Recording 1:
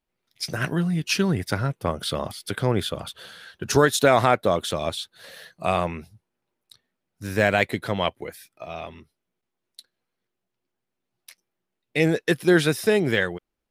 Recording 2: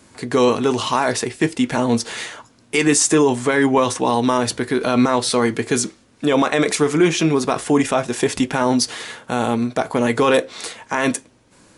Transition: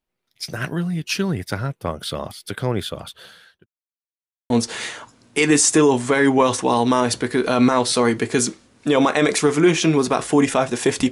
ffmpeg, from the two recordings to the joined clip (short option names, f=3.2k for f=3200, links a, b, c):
-filter_complex "[0:a]apad=whole_dur=11.11,atrim=end=11.11,asplit=2[a][b];[a]atrim=end=3.66,asetpts=PTS-STARTPTS,afade=t=out:st=3.25:d=0.41[c];[b]atrim=start=3.66:end=4.5,asetpts=PTS-STARTPTS,volume=0[d];[1:a]atrim=start=1.87:end=8.48,asetpts=PTS-STARTPTS,afade=t=in:d=0.004:c=hsin[e];[c][d][e]concat=n=3:v=0:a=1"